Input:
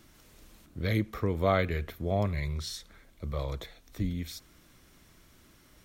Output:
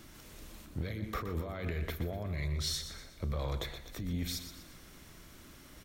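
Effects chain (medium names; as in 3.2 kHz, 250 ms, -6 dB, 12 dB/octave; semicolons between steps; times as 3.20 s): compressor with a negative ratio -35 dBFS, ratio -1; saturation -26 dBFS, distortion -21 dB; on a send: feedback delay 122 ms, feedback 44%, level -10 dB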